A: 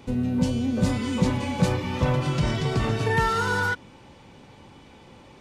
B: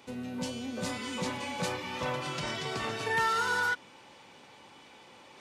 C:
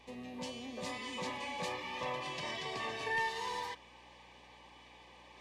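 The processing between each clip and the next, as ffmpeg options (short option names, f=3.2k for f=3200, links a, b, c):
-af "highpass=f=830:p=1,areverse,acompressor=mode=upward:threshold=-46dB:ratio=2.5,areverse,volume=-2dB"
-filter_complex "[0:a]aeval=exprs='val(0)+0.002*(sin(2*PI*60*n/s)+sin(2*PI*2*60*n/s)/2+sin(2*PI*3*60*n/s)/3+sin(2*PI*4*60*n/s)/4+sin(2*PI*5*60*n/s)/5)':c=same,asplit=2[a][b];[b]highpass=f=720:p=1,volume=11dB,asoftclip=type=tanh:threshold=-16.5dB[c];[a][c]amix=inputs=2:normalize=0,lowpass=f=3.2k:p=1,volume=-6dB,asuperstop=centerf=1400:order=20:qfactor=5.1,volume=-7.5dB"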